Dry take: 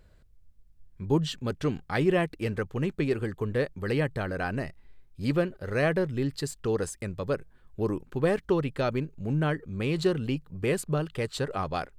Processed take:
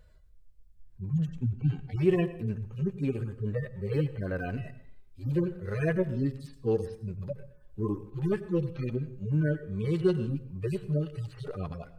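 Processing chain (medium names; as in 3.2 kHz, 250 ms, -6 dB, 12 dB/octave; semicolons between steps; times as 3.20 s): harmonic-percussive separation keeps harmonic; 1.27–1.96 s: tone controls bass +6 dB, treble -5 dB; plate-style reverb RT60 0.61 s, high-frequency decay 0.75×, pre-delay 80 ms, DRR 14.5 dB; 3.57–4.53 s: decimation joined by straight lines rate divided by 2×; trim +1 dB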